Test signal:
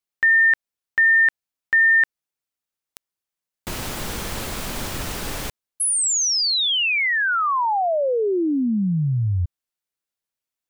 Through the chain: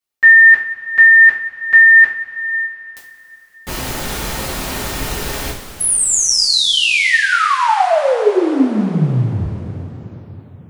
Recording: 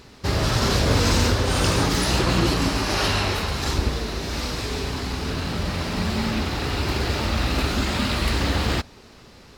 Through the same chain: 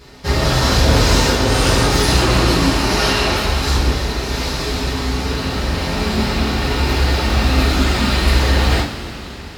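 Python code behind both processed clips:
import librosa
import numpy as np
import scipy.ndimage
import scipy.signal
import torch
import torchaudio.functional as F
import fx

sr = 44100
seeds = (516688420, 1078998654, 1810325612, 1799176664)

y = fx.rev_double_slope(x, sr, seeds[0], early_s=0.35, late_s=4.4, knee_db=-18, drr_db=-8.0)
y = y * 10.0 ** (-2.0 / 20.0)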